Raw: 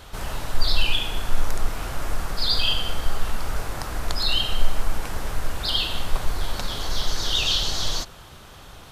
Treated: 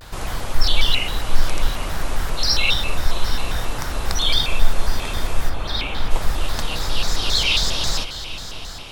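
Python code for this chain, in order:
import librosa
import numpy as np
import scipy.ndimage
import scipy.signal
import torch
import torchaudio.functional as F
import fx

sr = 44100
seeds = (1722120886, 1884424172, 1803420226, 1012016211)

y = fx.lowpass(x, sr, hz=fx.line((5.49, 1700.0), (6.1, 3800.0)), slope=12, at=(5.49, 6.1), fade=0.02)
y = fx.echo_diffused(y, sr, ms=740, feedback_pct=44, wet_db=-12.5)
y = fx.vibrato_shape(y, sr, shape='square', rate_hz=3.7, depth_cents=250.0)
y = y * librosa.db_to_amplitude(3.5)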